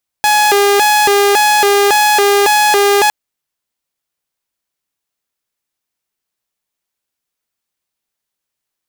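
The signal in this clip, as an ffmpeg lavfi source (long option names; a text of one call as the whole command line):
ffmpeg -f lavfi -i "aevalsrc='0.531*(2*mod((623*t+219/1.8*(0.5-abs(mod(1.8*t,1)-0.5))),1)-1)':duration=2.86:sample_rate=44100" out.wav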